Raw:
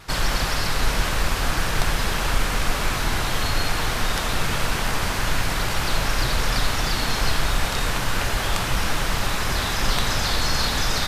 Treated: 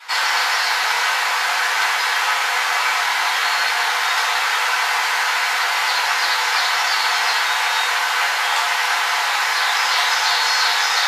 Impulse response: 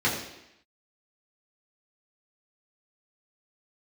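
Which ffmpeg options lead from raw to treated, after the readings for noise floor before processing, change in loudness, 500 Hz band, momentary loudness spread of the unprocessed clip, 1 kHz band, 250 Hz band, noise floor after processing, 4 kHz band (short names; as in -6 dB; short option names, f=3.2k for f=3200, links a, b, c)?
-25 dBFS, +6.5 dB, -2.0 dB, 2 LU, +8.5 dB, under -20 dB, -20 dBFS, +7.0 dB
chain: -filter_complex "[0:a]highpass=f=730:w=0.5412,highpass=f=730:w=1.3066[a];[1:a]atrim=start_sample=2205,atrim=end_sample=3528[b];[a][b]afir=irnorm=-1:irlink=0,volume=-3.5dB"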